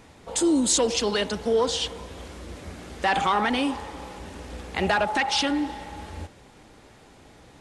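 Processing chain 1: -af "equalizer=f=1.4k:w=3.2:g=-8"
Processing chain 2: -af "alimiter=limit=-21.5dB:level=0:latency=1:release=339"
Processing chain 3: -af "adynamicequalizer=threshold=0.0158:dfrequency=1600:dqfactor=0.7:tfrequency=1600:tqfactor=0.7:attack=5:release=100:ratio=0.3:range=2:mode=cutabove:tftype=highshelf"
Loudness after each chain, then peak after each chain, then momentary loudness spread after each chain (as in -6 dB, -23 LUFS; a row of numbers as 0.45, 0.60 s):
-24.5, -32.5, -25.0 LUFS; -10.0, -21.5, -11.5 dBFS; 19, 22, 18 LU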